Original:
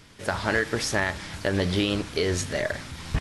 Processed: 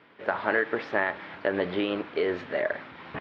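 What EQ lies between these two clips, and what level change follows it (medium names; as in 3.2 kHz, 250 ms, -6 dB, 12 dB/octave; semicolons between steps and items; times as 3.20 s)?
band-pass 350–3100 Hz; distance through air 370 m; +2.5 dB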